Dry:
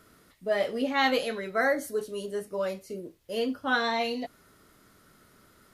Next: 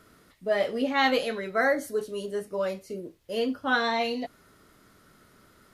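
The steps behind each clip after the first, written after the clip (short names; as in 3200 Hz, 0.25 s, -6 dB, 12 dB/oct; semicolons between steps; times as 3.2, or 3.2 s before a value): high shelf 7800 Hz -4.5 dB; gain +1.5 dB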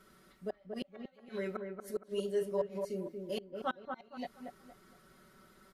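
flipped gate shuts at -19 dBFS, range -38 dB; comb 5.3 ms, depth 91%; dark delay 0.233 s, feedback 30%, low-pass 1700 Hz, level -5 dB; gain -7.5 dB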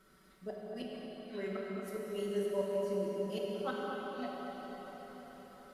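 reverb RT60 5.5 s, pre-delay 14 ms, DRR -3 dB; gain -4 dB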